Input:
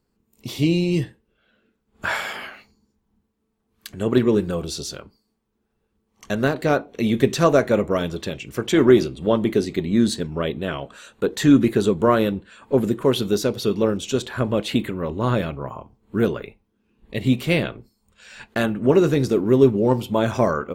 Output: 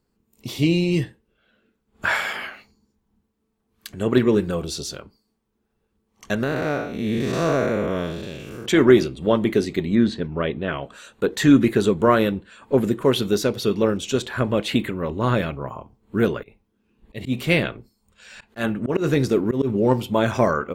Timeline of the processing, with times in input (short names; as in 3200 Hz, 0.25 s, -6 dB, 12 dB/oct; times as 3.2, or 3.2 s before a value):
6.43–8.66 time blur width 0.214 s
9.95–10.83 LPF 3000 Hz
16.41–19.7 auto swell 0.116 s
whole clip: dynamic EQ 1900 Hz, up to +4 dB, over -37 dBFS, Q 1.2